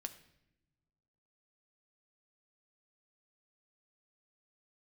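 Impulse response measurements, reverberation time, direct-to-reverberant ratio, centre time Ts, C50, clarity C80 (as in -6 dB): no single decay rate, 7.0 dB, 7 ms, 13.5 dB, 16.0 dB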